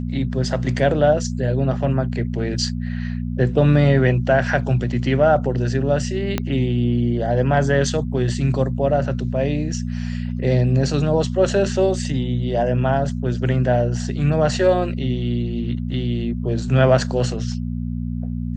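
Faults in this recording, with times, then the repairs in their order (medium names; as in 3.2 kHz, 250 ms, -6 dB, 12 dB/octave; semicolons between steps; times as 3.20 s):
hum 60 Hz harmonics 4 -25 dBFS
6.38 s: pop -7 dBFS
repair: de-click; de-hum 60 Hz, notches 4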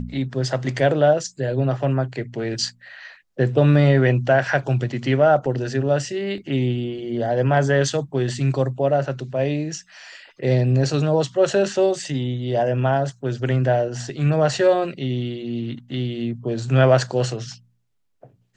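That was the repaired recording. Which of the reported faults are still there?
6.38 s: pop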